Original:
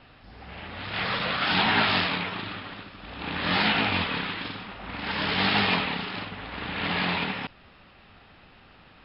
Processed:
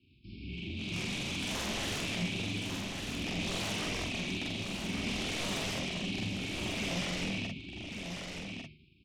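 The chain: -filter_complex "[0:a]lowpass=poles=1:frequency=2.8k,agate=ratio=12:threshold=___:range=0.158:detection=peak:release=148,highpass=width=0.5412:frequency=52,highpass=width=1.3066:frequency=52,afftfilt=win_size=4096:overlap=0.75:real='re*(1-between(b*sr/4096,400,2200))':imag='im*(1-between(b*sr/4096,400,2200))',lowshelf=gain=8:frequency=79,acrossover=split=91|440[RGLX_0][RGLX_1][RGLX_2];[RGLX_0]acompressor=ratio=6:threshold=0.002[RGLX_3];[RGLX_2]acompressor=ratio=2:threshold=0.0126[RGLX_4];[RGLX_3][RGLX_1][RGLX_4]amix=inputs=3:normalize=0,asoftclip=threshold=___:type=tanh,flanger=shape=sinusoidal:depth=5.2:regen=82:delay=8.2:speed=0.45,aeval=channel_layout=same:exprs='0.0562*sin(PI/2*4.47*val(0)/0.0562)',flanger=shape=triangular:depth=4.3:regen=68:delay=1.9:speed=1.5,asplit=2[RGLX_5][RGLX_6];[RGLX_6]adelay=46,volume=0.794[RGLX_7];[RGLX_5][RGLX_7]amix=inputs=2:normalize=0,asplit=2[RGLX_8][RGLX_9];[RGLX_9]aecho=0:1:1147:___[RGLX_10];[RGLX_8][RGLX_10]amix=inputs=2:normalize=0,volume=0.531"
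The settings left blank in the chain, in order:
0.00282, 0.1, 0.531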